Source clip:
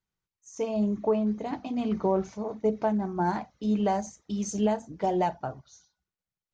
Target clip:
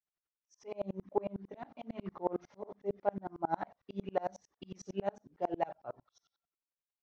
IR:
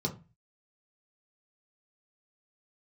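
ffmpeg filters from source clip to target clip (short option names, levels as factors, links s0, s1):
-af "asetrate=41013,aresample=44100,bass=f=250:g=-13,treble=f=4000:g=-14,aeval=exprs='val(0)*pow(10,-34*if(lt(mod(-11*n/s,1),2*abs(-11)/1000),1-mod(-11*n/s,1)/(2*abs(-11)/1000),(mod(-11*n/s,1)-2*abs(-11)/1000)/(1-2*abs(-11)/1000))/20)':c=same,volume=1.12"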